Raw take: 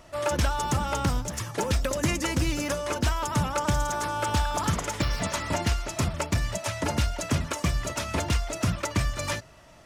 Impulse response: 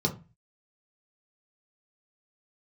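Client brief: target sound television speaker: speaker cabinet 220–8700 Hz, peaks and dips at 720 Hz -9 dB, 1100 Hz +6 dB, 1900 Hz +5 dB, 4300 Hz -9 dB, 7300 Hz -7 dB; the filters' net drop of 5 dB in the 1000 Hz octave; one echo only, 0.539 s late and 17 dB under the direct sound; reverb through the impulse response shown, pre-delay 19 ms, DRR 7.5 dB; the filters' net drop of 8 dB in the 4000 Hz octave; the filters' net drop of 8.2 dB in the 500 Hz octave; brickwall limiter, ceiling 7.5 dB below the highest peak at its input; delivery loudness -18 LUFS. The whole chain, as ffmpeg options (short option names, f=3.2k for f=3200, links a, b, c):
-filter_complex "[0:a]equalizer=f=500:t=o:g=-6,equalizer=f=1k:t=o:g=-5.5,equalizer=f=4k:t=o:g=-8,alimiter=limit=-23dB:level=0:latency=1,aecho=1:1:539:0.141,asplit=2[a][b];[1:a]atrim=start_sample=2205,adelay=19[c];[b][c]afir=irnorm=-1:irlink=0,volume=-15.5dB[d];[a][d]amix=inputs=2:normalize=0,highpass=f=220:w=0.5412,highpass=f=220:w=1.3066,equalizer=f=720:t=q:w=4:g=-9,equalizer=f=1.1k:t=q:w=4:g=6,equalizer=f=1.9k:t=q:w=4:g=5,equalizer=f=4.3k:t=q:w=4:g=-9,equalizer=f=7.3k:t=q:w=4:g=-7,lowpass=f=8.7k:w=0.5412,lowpass=f=8.7k:w=1.3066,volume=17dB"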